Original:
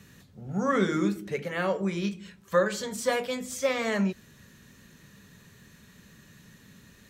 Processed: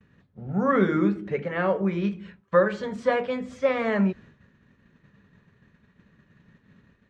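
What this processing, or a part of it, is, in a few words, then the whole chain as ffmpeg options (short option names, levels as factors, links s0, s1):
hearing-loss simulation: -af "lowpass=2000,agate=range=0.0224:threshold=0.00447:ratio=3:detection=peak,volume=1.58"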